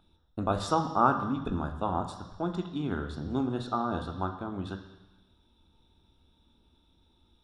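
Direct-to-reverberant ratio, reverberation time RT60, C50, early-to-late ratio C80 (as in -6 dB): 6.0 dB, 1.1 s, 9.5 dB, 11.5 dB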